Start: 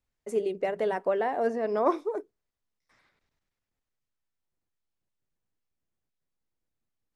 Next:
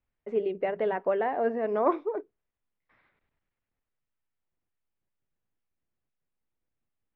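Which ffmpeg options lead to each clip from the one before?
ffmpeg -i in.wav -af "lowpass=frequency=3000:width=0.5412,lowpass=frequency=3000:width=1.3066" out.wav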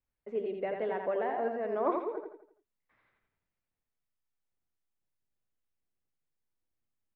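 ffmpeg -i in.wav -af "aecho=1:1:84|168|252|336|420:0.562|0.236|0.0992|0.0417|0.0175,volume=-6dB" out.wav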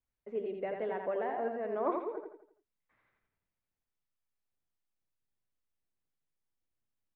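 ffmpeg -i in.wav -af "bass=frequency=250:gain=1,treble=frequency=4000:gain=-5,volume=-2.5dB" out.wav

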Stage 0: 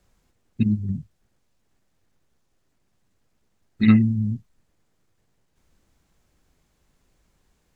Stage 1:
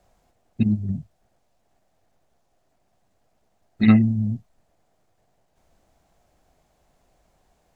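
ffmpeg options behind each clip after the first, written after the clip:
ffmpeg -i in.wav -af "equalizer=frequency=690:width=2.1:gain=14.5" out.wav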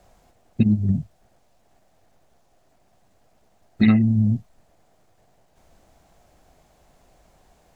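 ffmpeg -i in.wav -af "acompressor=threshold=-21dB:ratio=4,volume=7dB" out.wav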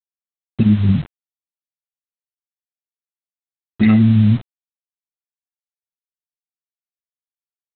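ffmpeg -i in.wav -af "alimiter=limit=-12.5dB:level=0:latency=1:release=74,aresample=8000,acrusher=bits=6:mix=0:aa=0.000001,aresample=44100,volume=7.5dB" out.wav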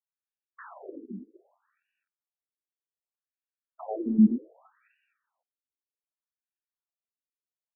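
ffmpeg -i in.wav -af "asuperstop=centerf=2100:order=4:qfactor=4.6,aecho=1:1:253|506|759|1012:0.168|0.0688|0.0282|0.0116,afftfilt=real='re*between(b*sr/1024,300*pow(2100/300,0.5+0.5*sin(2*PI*0.65*pts/sr))/1.41,300*pow(2100/300,0.5+0.5*sin(2*PI*0.65*pts/sr))*1.41)':imag='im*between(b*sr/1024,300*pow(2100/300,0.5+0.5*sin(2*PI*0.65*pts/sr))/1.41,300*pow(2100/300,0.5+0.5*sin(2*PI*0.65*pts/sr))*1.41)':win_size=1024:overlap=0.75" out.wav

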